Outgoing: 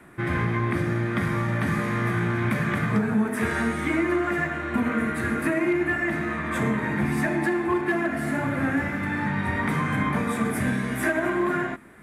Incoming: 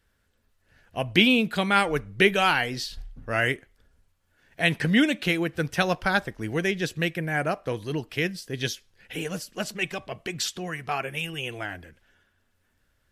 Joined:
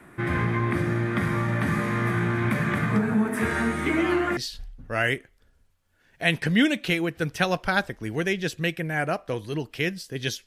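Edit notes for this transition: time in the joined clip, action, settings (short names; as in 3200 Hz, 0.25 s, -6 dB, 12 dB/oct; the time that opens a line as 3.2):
outgoing
3.86 add incoming from 2.24 s 0.51 s -13.5 dB
4.37 switch to incoming from 2.75 s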